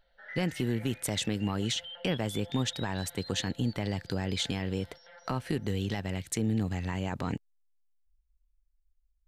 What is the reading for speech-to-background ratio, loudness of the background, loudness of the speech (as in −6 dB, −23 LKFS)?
13.5 dB, −46.5 LKFS, −33.0 LKFS